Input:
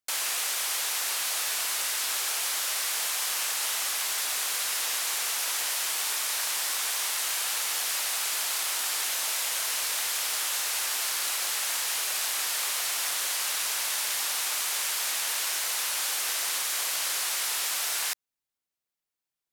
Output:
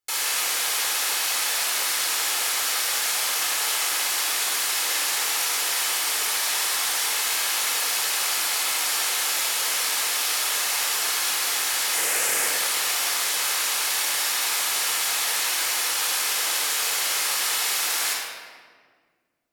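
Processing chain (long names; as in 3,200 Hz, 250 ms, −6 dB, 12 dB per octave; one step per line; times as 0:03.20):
0:11.93–0:12.48: octave-band graphic EQ 125/250/500/1,000/2,000/4,000/8,000 Hz +9/+4/+9/−3/+5/−7/+5 dB
rectangular room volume 2,300 cubic metres, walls mixed, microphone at 4.1 metres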